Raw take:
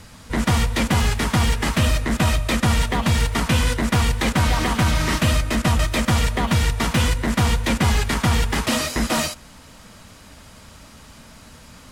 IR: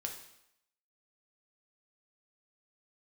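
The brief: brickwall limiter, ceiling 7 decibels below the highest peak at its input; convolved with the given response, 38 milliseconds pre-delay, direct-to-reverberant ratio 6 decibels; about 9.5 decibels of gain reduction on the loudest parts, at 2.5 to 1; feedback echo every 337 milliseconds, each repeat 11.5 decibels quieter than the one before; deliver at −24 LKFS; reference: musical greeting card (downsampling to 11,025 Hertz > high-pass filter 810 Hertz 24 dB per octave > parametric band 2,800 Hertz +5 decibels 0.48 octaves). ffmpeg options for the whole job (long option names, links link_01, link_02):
-filter_complex "[0:a]acompressor=threshold=-29dB:ratio=2.5,alimiter=limit=-22.5dB:level=0:latency=1,aecho=1:1:337|674|1011:0.266|0.0718|0.0194,asplit=2[link_01][link_02];[1:a]atrim=start_sample=2205,adelay=38[link_03];[link_02][link_03]afir=irnorm=-1:irlink=0,volume=-5.5dB[link_04];[link_01][link_04]amix=inputs=2:normalize=0,aresample=11025,aresample=44100,highpass=frequency=810:width=0.5412,highpass=frequency=810:width=1.3066,equalizer=frequency=2800:width_type=o:width=0.48:gain=5,volume=10.5dB"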